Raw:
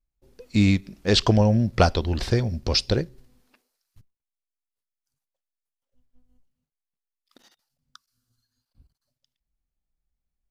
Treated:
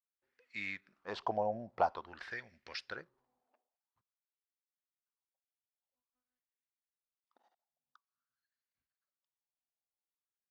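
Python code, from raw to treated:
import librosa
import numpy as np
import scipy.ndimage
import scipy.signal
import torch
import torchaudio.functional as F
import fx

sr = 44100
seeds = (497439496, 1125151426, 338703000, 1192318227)

y = fx.wah_lfo(x, sr, hz=0.49, low_hz=700.0, high_hz=2000.0, q=4.1)
y = y * librosa.db_to_amplitude(-3.0)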